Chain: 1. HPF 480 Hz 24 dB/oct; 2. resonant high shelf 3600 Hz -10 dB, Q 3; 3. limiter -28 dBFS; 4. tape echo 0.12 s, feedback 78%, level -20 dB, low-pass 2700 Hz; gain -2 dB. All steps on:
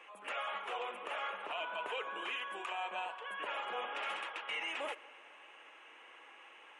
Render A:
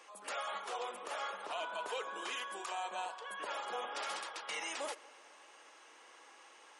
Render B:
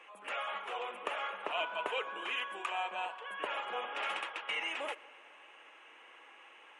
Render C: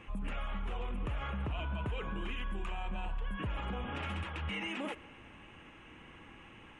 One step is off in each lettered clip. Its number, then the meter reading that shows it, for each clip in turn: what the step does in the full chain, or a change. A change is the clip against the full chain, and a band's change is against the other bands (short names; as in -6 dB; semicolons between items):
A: 2, 8 kHz band +13.5 dB; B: 3, crest factor change +6.5 dB; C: 1, 250 Hz band +19.0 dB